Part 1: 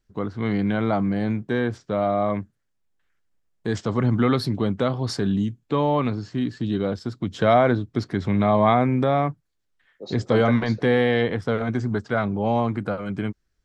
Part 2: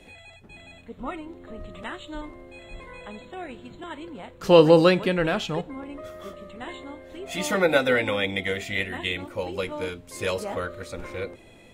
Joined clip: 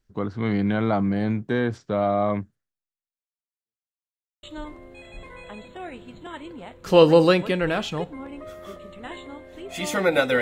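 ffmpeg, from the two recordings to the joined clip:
ffmpeg -i cue0.wav -i cue1.wav -filter_complex "[0:a]apad=whole_dur=10.41,atrim=end=10.41,asplit=2[link_01][link_02];[link_01]atrim=end=3.98,asetpts=PTS-STARTPTS,afade=type=out:start_time=2.49:duration=1.49:curve=exp[link_03];[link_02]atrim=start=3.98:end=4.43,asetpts=PTS-STARTPTS,volume=0[link_04];[1:a]atrim=start=2:end=7.98,asetpts=PTS-STARTPTS,afade=type=in:duration=0.004:curve=hsin[link_05];[link_03][link_04][link_05]concat=n=3:v=0:a=1" out.wav

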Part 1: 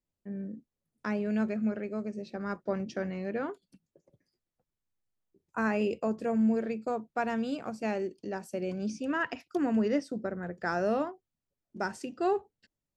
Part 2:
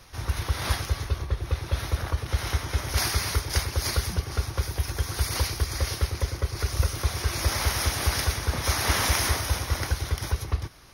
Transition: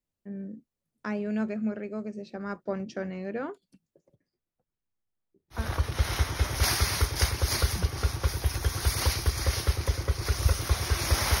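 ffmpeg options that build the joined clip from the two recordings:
ffmpeg -i cue0.wav -i cue1.wav -filter_complex "[0:a]asettb=1/sr,asplit=3[link_01][link_02][link_03];[link_01]atrim=end=4.154[link_04];[link_02]atrim=start=4.15:end=5.7,asetpts=PTS-STARTPTS,afade=type=in:duration=0.004:curve=qsin,afade=type=out:start_time=1.546:duration=0.004:curve=qsin,lowpass=frequency=2000:poles=1[link_05];[link_03]atrim=start=5.696[link_06];[link_04][link_05]acrossfade=duration=0.004:curve1=hsin:curve2=qsin[link_07];[link_07][link_06]acrossfade=duration=0.004:curve1=qsin:curve2=hsin,apad=whole_dur=11.4,atrim=end=11.4,atrim=end=5.7,asetpts=PTS-STARTPTS[link_08];[1:a]atrim=start=1.84:end=7.74,asetpts=PTS-STARTPTS[link_09];[link_08][link_09]acrossfade=duration=0.2:curve1=tri:curve2=tri" out.wav

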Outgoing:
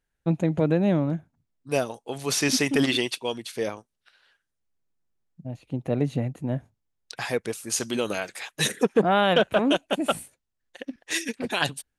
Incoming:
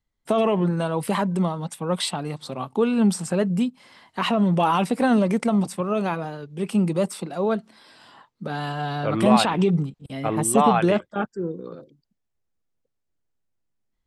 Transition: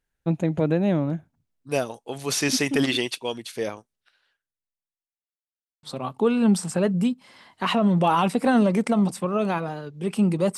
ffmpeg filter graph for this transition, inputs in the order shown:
ffmpeg -i cue0.wav -i cue1.wav -filter_complex "[0:a]apad=whole_dur=10.57,atrim=end=10.57,asplit=2[link_01][link_02];[link_01]atrim=end=5.28,asetpts=PTS-STARTPTS,afade=type=out:start_time=3.75:duration=1.53:curve=qua[link_03];[link_02]atrim=start=5.28:end=5.83,asetpts=PTS-STARTPTS,volume=0[link_04];[1:a]atrim=start=2.39:end=7.13,asetpts=PTS-STARTPTS,afade=type=in:duration=0.004:curve=hsin[link_05];[link_03][link_04][link_05]concat=n=3:v=0:a=1" out.wav

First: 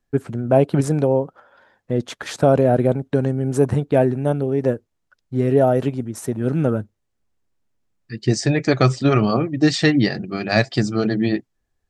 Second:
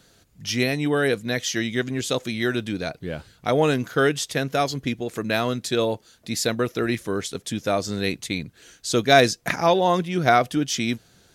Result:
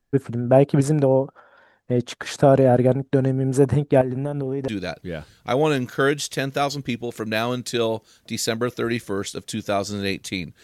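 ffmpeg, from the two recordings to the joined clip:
ffmpeg -i cue0.wav -i cue1.wav -filter_complex "[0:a]asettb=1/sr,asplit=3[link_01][link_02][link_03];[link_01]atrim=end=4.014[link_04];[link_02]atrim=start=4.01:end=4.68,asetpts=PTS-STARTPTS,afade=type=in:duration=0.004:curve=qsin,afade=type=out:start_time=0.666:duration=0.004:curve=qsin,acompressor=threshold=-20dB:ratio=10:attack=3.2:release=140:knee=1:detection=peak[link_05];[link_03]atrim=start=4.676[link_06];[link_04][link_05]acrossfade=duration=0.004:curve1=hsin:curve2=qsin[link_07];[link_07][link_06]acrossfade=duration=0.004:curve1=qsin:curve2=hsin,apad=whole_dur=10.63,atrim=end=10.63,atrim=end=4.682[link_08];[1:a]atrim=start=2.658:end=8.61[link_09];[link_08][link_09]acrossfade=duration=0.004:curve1=hsin:curve2=hsin" out.wav

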